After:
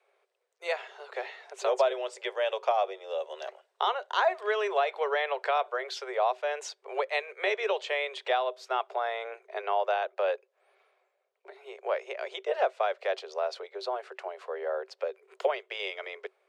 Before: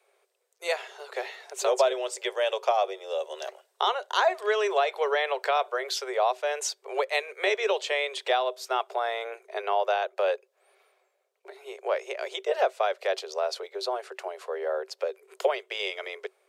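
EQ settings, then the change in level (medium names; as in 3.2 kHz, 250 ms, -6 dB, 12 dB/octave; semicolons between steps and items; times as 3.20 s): distance through air 59 m; tone controls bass -15 dB, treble -8 dB; treble shelf 7.5 kHz +4.5 dB; -1.5 dB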